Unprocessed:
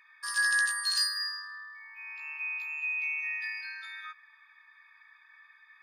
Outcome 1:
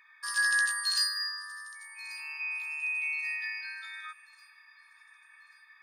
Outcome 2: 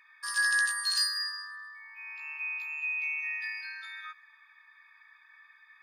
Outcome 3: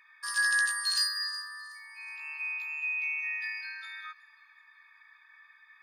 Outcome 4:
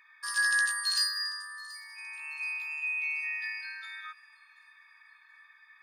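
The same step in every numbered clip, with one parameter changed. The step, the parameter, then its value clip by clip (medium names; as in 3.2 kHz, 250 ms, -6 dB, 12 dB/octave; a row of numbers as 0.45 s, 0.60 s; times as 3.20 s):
feedback echo behind a high-pass, time: 1138 ms, 123 ms, 370 ms, 730 ms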